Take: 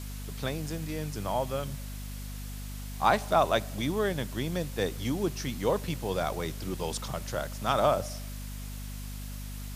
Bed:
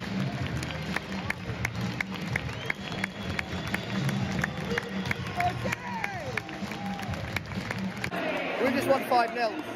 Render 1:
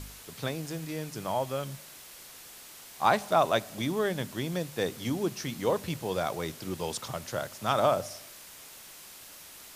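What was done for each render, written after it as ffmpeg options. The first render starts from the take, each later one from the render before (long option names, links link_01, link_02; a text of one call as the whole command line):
ffmpeg -i in.wav -af "bandreject=frequency=50:width_type=h:width=4,bandreject=frequency=100:width_type=h:width=4,bandreject=frequency=150:width_type=h:width=4,bandreject=frequency=200:width_type=h:width=4,bandreject=frequency=250:width_type=h:width=4" out.wav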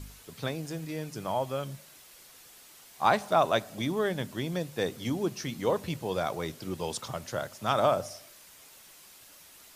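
ffmpeg -i in.wav -af "afftdn=noise_reduction=6:noise_floor=-49" out.wav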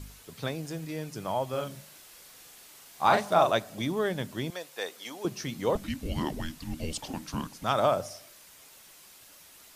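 ffmpeg -i in.wav -filter_complex "[0:a]asettb=1/sr,asplit=3[link_01][link_02][link_03];[link_01]atrim=end=1.494[link_04];[link_02]atrim=start=1.49:end=3.51,asetpts=PTS-STARTPTS,afade=type=in:duration=0.004:curve=qsin,afade=type=out:start_time=2.016:duration=0.004:curve=qsin,asplit=2[link_05][link_06];[link_06]adelay=40,volume=-3.5dB[link_07];[link_05][link_07]amix=inputs=2:normalize=0,atrim=end_sample=89082[link_08];[link_03]atrim=start=3.506[link_09];[link_04][link_08]acrossfade=duration=0.004:curve1=hsin:curve2=qsin[link_10];[link_10][link_09]acrossfade=duration=0.004:curve1=qsin:curve2=hsin,asettb=1/sr,asplit=3[link_11][link_12][link_13];[link_11]atrim=end=4.504[link_14];[link_12]atrim=start=4.5:end=5.25,asetpts=PTS-STARTPTS,afade=type=in:duration=0.004:curve=qsin,afade=type=out:start_time=0.746:duration=0.004:curve=qsin,highpass=650[link_15];[link_13]atrim=start=5.246[link_16];[link_14][link_15]acrossfade=duration=0.004:curve1=hsin:curve2=qsin[link_17];[link_17][link_16]acrossfade=duration=0.004:curve1=qsin:curve2=hsin,asettb=1/sr,asplit=3[link_18][link_19][link_20];[link_18]atrim=end=5.754[link_21];[link_19]atrim=start=5.75:end=7.64,asetpts=PTS-STARTPTS,afade=type=in:duration=0.004:curve=qsin,afade=type=out:start_time=1.886:duration=0.004:curve=qsin,afreqshift=-400[link_22];[link_20]atrim=start=7.636[link_23];[link_21][link_22]acrossfade=duration=0.004:curve1=hsin:curve2=qsin[link_24];[link_24][link_23]acrossfade=duration=0.004:curve1=qsin:curve2=hsin" out.wav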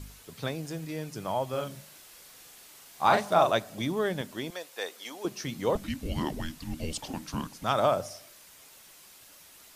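ffmpeg -i in.wav -filter_complex "[0:a]asettb=1/sr,asplit=3[link_01][link_02][link_03];[link_01]atrim=end=4.214[link_04];[link_02]atrim=start=4.21:end=5.45,asetpts=PTS-STARTPTS,afade=type=in:duration=0.004:curve=qsin,afade=type=out:start_time=1.236:duration=0.004:curve=qsin,equalizer=frequency=120:width_type=o:width=1.2:gain=-9.5[link_05];[link_03]atrim=start=5.446[link_06];[link_04][link_05]acrossfade=duration=0.004:curve1=hsin:curve2=qsin[link_07];[link_07][link_06]acrossfade=duration=0.004:curve1=qsin:curve2=hsin" out.wav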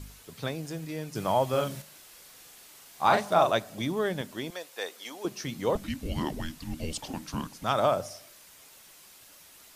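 ffmpeg -i in.wav -filter_complex "[0:a]asettb=1/sr,asplit=3[link_01][link_02][link_03];[link_01]atrim=end=1.154[link_04];[link_02]atrim=start=1.15:end=1.82,asetpts=PTS-STARTPTS,afade=type=in:duration=0.004:curve=qsin,afade=type=out:start_time=0.666:duration=0.004:curve=qsin,acontrast=28[link_05];[link_03]atrim=start=1.816[link_06];[link_04][link_05]acrossfade=duration=0.004:curve1=hsin:curve2=qsin[link_07];[link_07][link_06]acrossfade=duration=0.004:curve1=qsin:curve2=hsin" out.wav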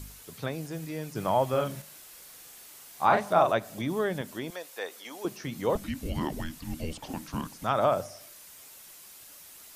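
ffmpeg -i in.wav -filter_complex "[0:a]acrossover=split=2500[link_01][link_02];[link_02]acompressor=threshold=-53dB:ratio=4:attack=1:release=60[link_03];[link_01][link_03]amix=inputs=2:normalize=0,highshelf=frequency=4900:gain=10" out.wav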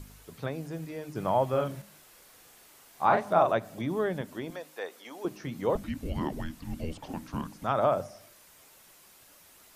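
ffmpeg -i in.wav -af "highshelf=frequency=2600:gain=-8.5,bandreject=frequency=51.39:width_type=h:width=4,bandreject=frequency=102.78:width_type=h:width=4,bandreject=frequency=154.17:width_type=h:width=4,bandreject=frequency=205.56:width_type=h:width=4,bandreject=frequency=256.95:width_type=h:width=4,bandreject=frequency=308.34:width_type=h:width=4" out.wav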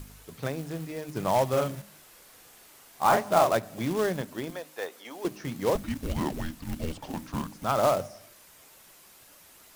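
ffmpeg -i in.wav -filter_complex "[0:a]asplit=2[link_01][link_02];[link_02]volume=22.5dB,asoftclip=hard,volume=-22.5dB,volume=-11.5dB[link_03];[link_01][link_03]amix=inputs=2:normalize=0,acrusher=bits=3:mode=log:mix=0:aa=0.000001" out.wav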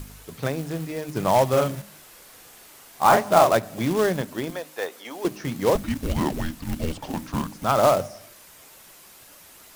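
ffmpeg -i in.wav -af "volume=5.5dB" out.wav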